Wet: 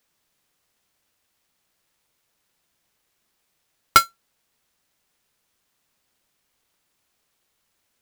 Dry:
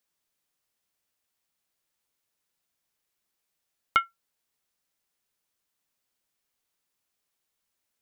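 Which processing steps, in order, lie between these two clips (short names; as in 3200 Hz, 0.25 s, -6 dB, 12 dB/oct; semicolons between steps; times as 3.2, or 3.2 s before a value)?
half-waves squared off; bell 90 Hz +2 dB 2.8 oct; gain +6 dB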